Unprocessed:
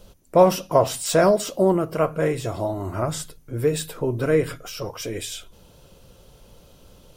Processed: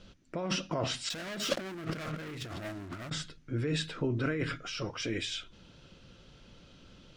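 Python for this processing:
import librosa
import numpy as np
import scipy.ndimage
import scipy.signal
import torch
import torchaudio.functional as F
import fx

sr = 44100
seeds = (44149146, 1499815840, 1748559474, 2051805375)

y = scipy.signal.sosfilt(scipy.signal.bessel(4, 3800.0, 'lowpass', norm='mag', fs=sr, output='sos'), x)
y = fx.leveller(y, sr, passes=5, at=(1.1, 3.1))
y = fx.band_shelf(y, sr, hz=660.0, db=-10.0, octaves=1.7)
y = fx.over_compress(y, sr, threshold_db=-27.0, ratio=-1.0)
y = fx.low_shelf(y, sr, hz=140.0, db=-10.5)
y = y * librosa.db_to_amplitude(-6.0)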